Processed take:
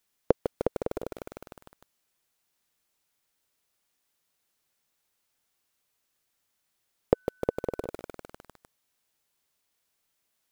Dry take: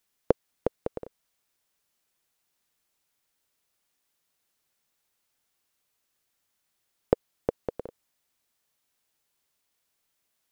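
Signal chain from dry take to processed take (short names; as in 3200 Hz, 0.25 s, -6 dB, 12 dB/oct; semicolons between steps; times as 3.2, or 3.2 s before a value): 7.13–7.87 whine 1500 Hz -62 dBFS; lo-fi delay 0.152 s, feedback 80%, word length 6-bit, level -8 dB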